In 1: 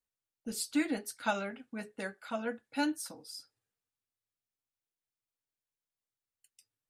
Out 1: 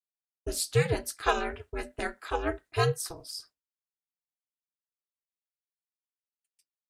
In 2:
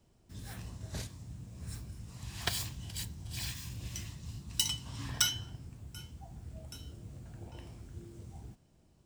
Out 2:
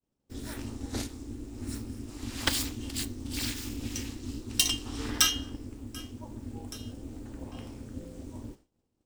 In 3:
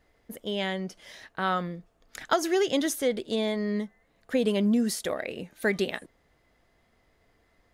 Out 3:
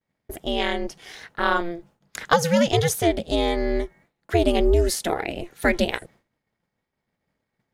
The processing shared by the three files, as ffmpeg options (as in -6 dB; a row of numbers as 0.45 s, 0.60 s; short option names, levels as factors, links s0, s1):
-af "acontrast=21,aeval=exprs='val(0)*sin(2*PI*170*n/s)':c=same,agate=range=0.0224:threshold=0.00282:ratio=3:detection=peak,volume=1.58"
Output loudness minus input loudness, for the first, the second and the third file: +5.5 LU, +5.5 LU, +5.5 LU